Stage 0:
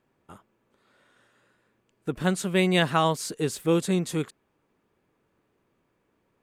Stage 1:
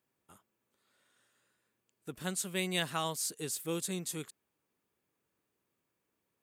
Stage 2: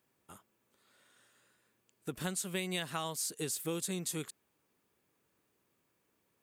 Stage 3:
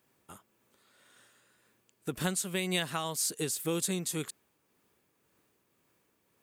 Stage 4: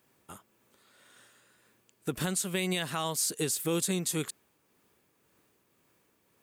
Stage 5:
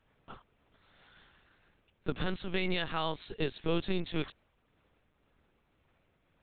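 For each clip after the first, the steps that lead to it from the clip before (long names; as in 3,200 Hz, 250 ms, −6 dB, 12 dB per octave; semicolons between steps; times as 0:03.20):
high-pass filter 50 Hz; first-order pre-emphasis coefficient 0.8
downward compressor 5 to 1, threshold −39 dBFS, peak gain reduction 11 dB; level +5.5 dB
shaped tremolo triangle 1.9 Hz, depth 35%; level +6 dB
brickwall limiter −22 dBFS, peak gain reduction 6.5 dB; level +3 dB
linear-prediction vocoder at 8 kHz pitch kept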